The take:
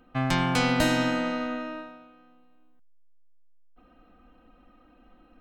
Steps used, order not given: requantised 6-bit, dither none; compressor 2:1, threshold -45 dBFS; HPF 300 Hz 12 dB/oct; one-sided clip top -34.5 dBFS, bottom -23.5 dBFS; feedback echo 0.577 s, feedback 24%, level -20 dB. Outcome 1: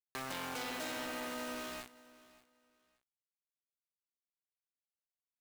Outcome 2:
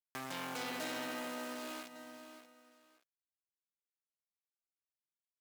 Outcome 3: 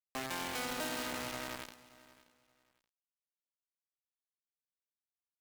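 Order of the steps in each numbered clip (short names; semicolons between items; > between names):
one-sided clip > HPF > requantised > compressor > feedback echo; requantised > feedback echo > one-sided clip > compressor > HPF; HPF > compressor > requantised > one-sided clip > feedback echo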